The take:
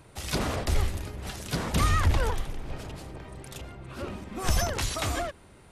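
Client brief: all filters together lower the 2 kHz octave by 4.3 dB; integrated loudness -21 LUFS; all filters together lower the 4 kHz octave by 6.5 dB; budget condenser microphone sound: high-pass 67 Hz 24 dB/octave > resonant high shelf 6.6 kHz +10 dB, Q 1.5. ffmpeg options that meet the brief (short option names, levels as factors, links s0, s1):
-af "highpass=f=67:w=0.5412,highpass=f=67:w=1.3066,equalizer=f=2000:t=o:g=-3.5,equalizer=f=4000:t=o:g=-5.5,highshelf=f=6600:t=q:w=1.5:g=10,volume=2.66"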